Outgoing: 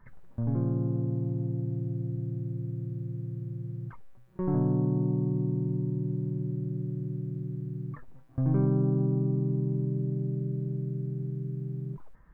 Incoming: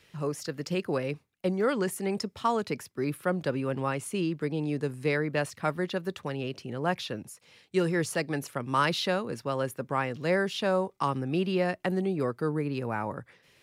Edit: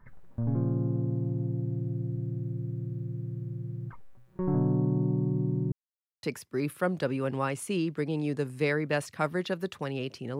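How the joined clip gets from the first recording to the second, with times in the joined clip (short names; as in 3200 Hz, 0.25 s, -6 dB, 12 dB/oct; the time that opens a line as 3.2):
outgoing
5.72–6.23 mute
6.23 switch to incoming from 2.67 s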